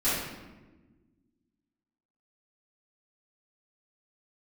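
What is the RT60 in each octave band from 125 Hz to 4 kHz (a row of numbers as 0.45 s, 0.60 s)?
2.0 s, 2.1 s, 1.5 s, 1.1 s, 1.0 s, 0.75 s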